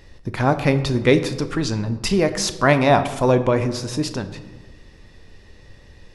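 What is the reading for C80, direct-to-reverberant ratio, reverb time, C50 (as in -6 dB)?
14.0 dB, 9.0 dB, 1.3 s, 12.0 dB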